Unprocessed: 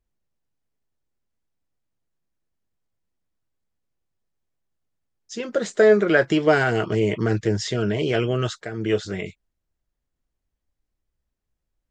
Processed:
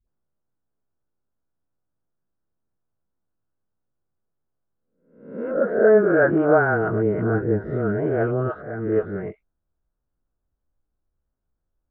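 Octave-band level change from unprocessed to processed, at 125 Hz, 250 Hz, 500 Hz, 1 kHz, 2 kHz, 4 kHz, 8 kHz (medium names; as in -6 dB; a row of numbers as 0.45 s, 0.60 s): -0.5 dB, +0.5 dB, +1.5 dB, +2.0 dB, -1.0 dB, under -30 dB, under -40 dB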